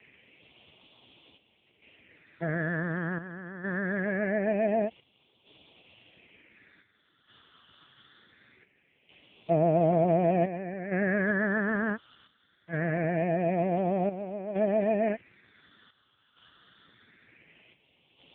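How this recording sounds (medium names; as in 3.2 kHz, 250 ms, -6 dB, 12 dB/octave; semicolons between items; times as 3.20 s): a quantiser's noise floor 8-bit, dither triangular; phasing stages 8, 0.23 Hz, lowest notch 670–1600 Hz; chopped level 0.55 Hz, depth 65%, duty 75%; AMR-NB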